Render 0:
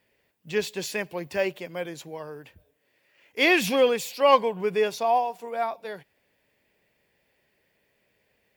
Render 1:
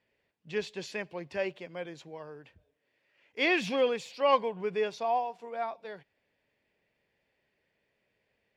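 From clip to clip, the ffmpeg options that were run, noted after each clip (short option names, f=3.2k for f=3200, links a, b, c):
-af "lowpass=5.1k,volume=-6.5dB"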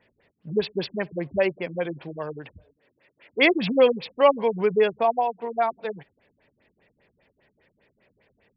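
-filter_complex "[0:a]asplit=2[a][b];[b]acompressor=threshold=-37dB:ratio=6,volume=-2dB[c];[a][c]amix=inputs=2:normalize=0,afftfilt=real='re*lt(b*sr/1024,260*pow(5700/260,0.5+0.5*sin(2*PI*5*pts/sr)))':imag='im*lt(b*sr/1024,260*pow(5700/260,0.5+0.5*sin(2*PI*5*pts/sr)))':win_size=1024:overlap=0.75,volume=8.5dB"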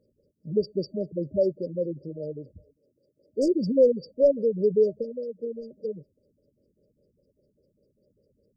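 -af "acontrast=55,afftfilt=real='re*(1-between(b*sr/4096,620,4600))':imag='im*(1-between(b*sr/4096,620,4600))':win_size=4096:overlap=0.75,volume=-6dB"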